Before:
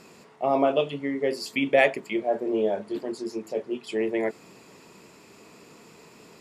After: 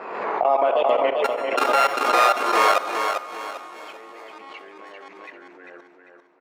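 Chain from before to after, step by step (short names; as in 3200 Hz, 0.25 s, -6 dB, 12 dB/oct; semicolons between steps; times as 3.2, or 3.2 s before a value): 1.24–3.74 sample sorter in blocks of 32 samples; high shelf 7800 Hz +11 dB; low-pass opened by the level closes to 1200 Hz, open at -22 dBFS; echoes that change speed 0.186 s, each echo -2 st, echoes 2; overdrive pedal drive 8 dB, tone 2200 Hz, clips at -7.5 dBFS; high shelf 3700 Hz -9.5 dB; level quantiser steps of 23 dB; HPF 600 Hz 12 dB/oct; feedback echo 0.396 s, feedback 36%, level -6 dB; reverb RT60 0.35 s, pre-delay 57 ms, DRR 15.5 dB; backwards sustainer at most 42 dB/s; gain +7.5 dB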